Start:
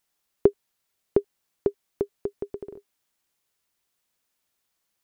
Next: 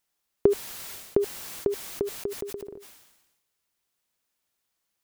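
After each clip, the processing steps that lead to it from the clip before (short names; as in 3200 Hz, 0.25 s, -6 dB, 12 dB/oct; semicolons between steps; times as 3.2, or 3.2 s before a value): sustainer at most 52 dB/s; gain -2 dB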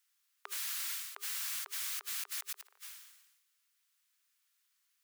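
inverse Chebyshev high-pass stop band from 360 Hz, stop band 60 dB; in parallel at -11 dB: hard clip -38.5 dBFS, distortion -11 dB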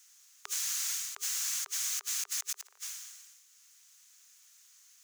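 bell 6500 Hz +13.5 dB 0.66 oct; three-band squash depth 40%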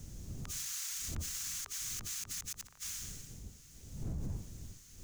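wind noise 110 Hz -43 dBFS; limiter -32.5 dBFS, peak gain reduction 10.5 dB; gain +1.5 dB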